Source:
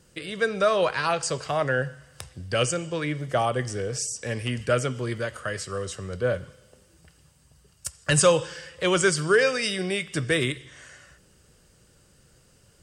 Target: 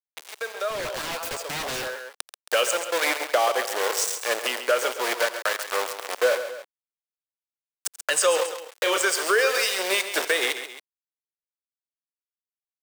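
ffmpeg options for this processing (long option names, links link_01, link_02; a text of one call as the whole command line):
ffmpeg -i in.wav -filter_complex "[0:a]asettb=1/sr,asplit=3[link_01][link_02][link_03];[link_01]atrim=end=8.364[link_04];[link_02]atrim=start=8.36:end=8.98,asetpts=PTS-STARTPTS,afade=type=in:duration=0.004:curve=qsin,afade=type=out:start_time=0.616:duration=0.004:curve=qsin,asplit=2[link_05][link_06];[link_06]adelay=31,volume=-2dB[link_07];[link_05][link_07]amix=inputs=2:normalize=0,atrim=end_sample=27342[link_08];[link_03]atrim=start=8.976[link_09];[link_04][link_08]acrossfade=duration=0.004:curve1=hsin:curve2=qsin[link_10];[link_10][link_09]acrossfade=duration=0.004:curve1=qsin:curve2=hsin,aeval=exprs='val(0)*gte(abs(val(0)),0.0447)':channel_layout=same,highpass=frequency=450:width=0.5412,highpass=frequency=450:width=1.3066,alimiter=limit=-20dB:level=0:latency=1:release=386,aecho=1:1:86|135|271:0.112|0.299|0.15,dynaudnorm=framelen=240:gausssize=9:maxgain=9dB,asettb=1/sr,asplit=3[link_11][link_12][link_13];[link_11]atrim=end=0.704[link_14];[link_12]atrim=start=0.7:end=2.06,asetpts=PTS-STARTPTS,afade=type=in:duration=0.004:curve=qsin,afade=type=out:start_time=1.356:duration=0.004:curve=qsin,aeval=exprs='0.0562*(abs(mod(val(0)/0.0562+3,4)-2)-1)':channel_layout=same[link_15];[link_13]atrim=start=2.056[link_16];[link_14][link_15]acrossfade=duration=0.004:curve1=hsin:curve2=qsin[link_17];[link_17][link_16]acrossfade=duration=0.004:curve1=qsin:curve2=hsin" out.wav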